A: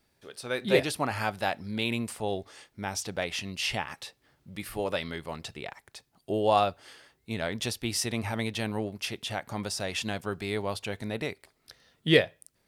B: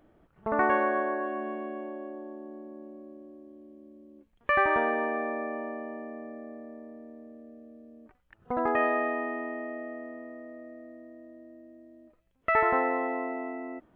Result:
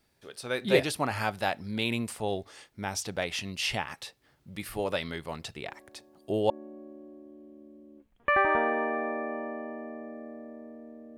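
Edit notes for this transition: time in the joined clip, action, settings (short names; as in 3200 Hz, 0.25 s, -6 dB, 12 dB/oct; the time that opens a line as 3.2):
A
5.64 add B from 1.85 s 0.86 s -17.5 dB
6.5 switch to B from 2.71 s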